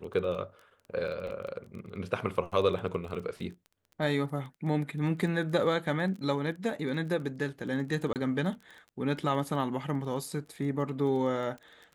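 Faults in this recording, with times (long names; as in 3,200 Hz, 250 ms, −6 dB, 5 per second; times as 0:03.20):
surface crackle 18 per second −39 dBFS
0:01.27: drop-out 3 ms
0:08.13–0:08.16: drop-out 28 ms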